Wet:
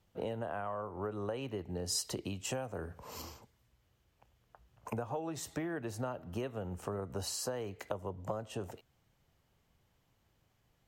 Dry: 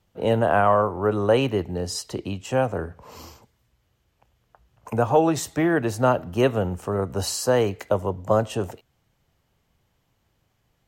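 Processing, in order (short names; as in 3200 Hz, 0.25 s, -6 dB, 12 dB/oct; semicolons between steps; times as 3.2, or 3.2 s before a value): compressor 16:1, threshold -30 dBFS, peak gain reduction 18 dB; 1.86–3.22 high shelf 5300 Hz +8.5 dB; gain -4.5 dB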